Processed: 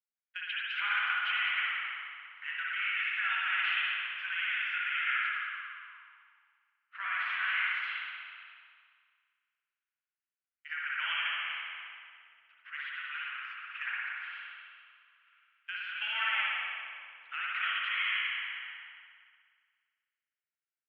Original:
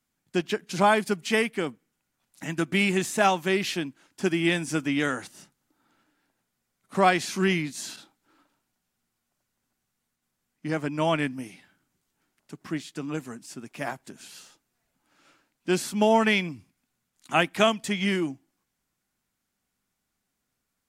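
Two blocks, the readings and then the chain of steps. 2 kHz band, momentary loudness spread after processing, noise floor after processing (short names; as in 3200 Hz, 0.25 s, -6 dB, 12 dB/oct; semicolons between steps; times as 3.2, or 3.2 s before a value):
+0.5 dB, 16 LU, under -85 dBFS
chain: de-esser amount 75%; elliptic band-pass 1400–3000 Hz, stop band 60 dB; limiter -26.5 dBFS, peak gain reduction 10.5 dB; compressor, threshold -40 dBFS, peak gain reduction 8 dB; on a send: frequency-shifting echo 0.203 s, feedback 54%, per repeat -84 Hz, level -9 dB; on the sum: spring tank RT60 3 s, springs 56 ms, chirp 50 ms, DRR -5.5 dB; three-band expander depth 70%; gain +5.5 dB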